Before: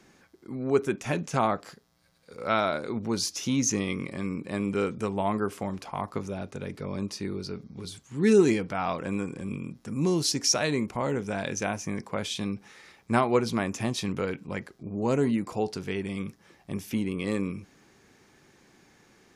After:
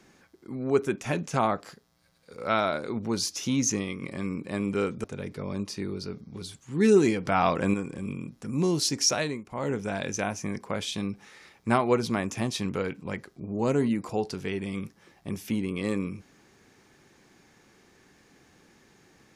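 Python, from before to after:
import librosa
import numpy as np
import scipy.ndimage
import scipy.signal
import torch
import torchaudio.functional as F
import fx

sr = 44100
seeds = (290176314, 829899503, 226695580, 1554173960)

y = fx.edit(x, sr, fx.fade_out_to(start_s=3.69, length_s=0.33, floor_db=-6.5),
    fx.cut(start_s=5.04, length_s=1.43),
    fx.clip_gain(start_s=8.68, length_s=0.49, db=6.0),
    fx.fade_down_up(start_s=10.6, length_s=0.53, db=-13.0, fade_s=0.25), tone=tone)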